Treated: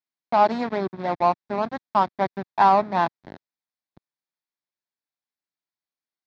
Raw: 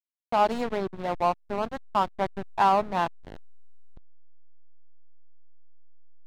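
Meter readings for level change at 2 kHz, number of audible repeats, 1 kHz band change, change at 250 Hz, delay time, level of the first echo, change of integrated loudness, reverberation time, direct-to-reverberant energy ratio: +3.5 dB, none, +4.5 dB, +4.0 dB, none, none, +4.5 dB, none, none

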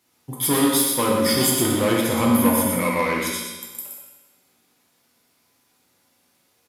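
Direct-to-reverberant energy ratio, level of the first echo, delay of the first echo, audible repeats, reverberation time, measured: -3.5 dB, -5.5 dB, 0.121 s, 1, 1.3 s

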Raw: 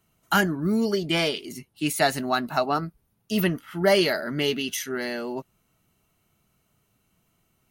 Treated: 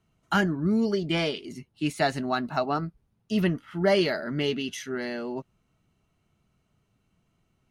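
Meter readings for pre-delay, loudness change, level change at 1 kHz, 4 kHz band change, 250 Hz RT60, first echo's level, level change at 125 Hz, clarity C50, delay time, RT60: none, -2.5 dB, -3.5 dB, -5.0 dB, none, none, 0.0 dB, none, none, none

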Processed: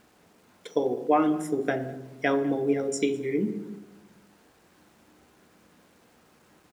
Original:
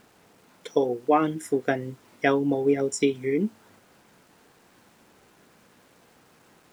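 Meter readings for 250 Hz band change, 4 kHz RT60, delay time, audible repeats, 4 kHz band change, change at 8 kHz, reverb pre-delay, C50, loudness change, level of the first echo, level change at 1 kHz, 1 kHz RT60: -0.5 dB, 0.70 s, 0.204 s, 1, -3.0 dB, -2.5 dB, 3 ms, 12.0 dB, -2.0 dB, -22.5 dB, -1.5 dB, 1.0 s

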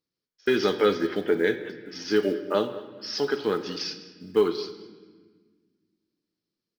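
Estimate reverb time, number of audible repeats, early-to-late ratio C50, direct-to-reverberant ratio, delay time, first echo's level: 1.4 s, 1, 11.0 dB, 8.5 dB, 0.205 s, -19.5 dB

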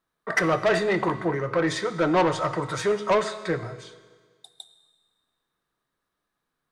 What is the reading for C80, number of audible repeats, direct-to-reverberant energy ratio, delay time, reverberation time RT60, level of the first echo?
14.0 dB, none, 11.0 dB, none, 1.6 s, none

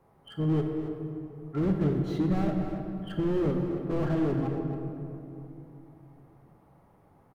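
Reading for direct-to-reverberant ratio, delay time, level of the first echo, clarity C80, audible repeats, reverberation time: 2.0 dB, 0.273 s, -10.5 dB, 3.5 dB, 1, 3.0 s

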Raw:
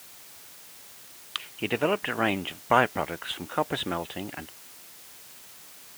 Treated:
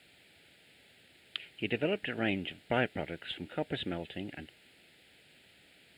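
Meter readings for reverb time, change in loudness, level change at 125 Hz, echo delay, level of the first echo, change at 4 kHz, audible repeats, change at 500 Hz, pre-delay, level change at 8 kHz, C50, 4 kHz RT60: none, -7.0 dB, -3.5 dB, none, none, -6.0 dB, none, -6.5 dB, none, under -20 dB, none, none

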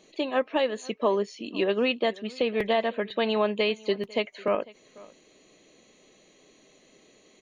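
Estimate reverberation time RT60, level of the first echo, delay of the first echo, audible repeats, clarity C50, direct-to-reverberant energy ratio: none, -22.5 dB, 0.499 s, 1, none, none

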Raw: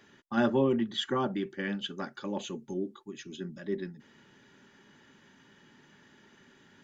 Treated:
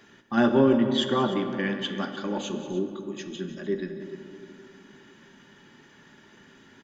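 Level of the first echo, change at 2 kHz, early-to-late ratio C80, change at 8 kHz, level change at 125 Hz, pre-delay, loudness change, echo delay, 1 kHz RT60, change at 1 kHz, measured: -14.0 dB, +5.5 dB, 7.0 dB, n/a, +5.0 dB, 3 ms, +6.0 dB, 0.185 s, 2.3 s, +5.5 dB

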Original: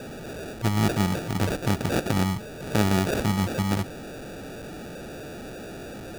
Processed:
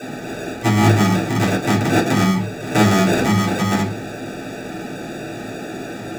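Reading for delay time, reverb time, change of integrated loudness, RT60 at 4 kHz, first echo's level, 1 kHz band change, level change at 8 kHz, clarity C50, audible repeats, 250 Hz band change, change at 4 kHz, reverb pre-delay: none, 0.45 s, +8.5 dB, 0.45 s, none, +10.0 dB, +7.5 dB, 11.5 dB, none, +9.0 dB, +8.0 dB, 3 ms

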